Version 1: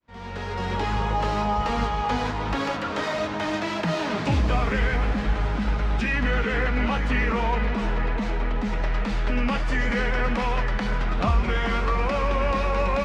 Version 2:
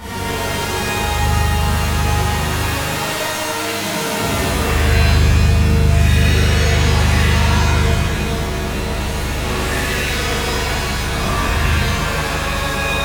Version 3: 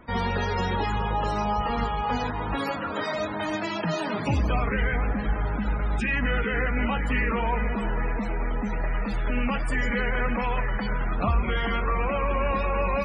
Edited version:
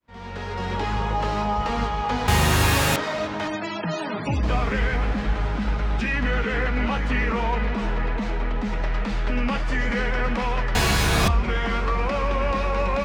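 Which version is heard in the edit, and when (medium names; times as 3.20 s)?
1
2.28–2.96 s: from 2
3.48–4.43 s: from 3
10.75–11.28 s: from 2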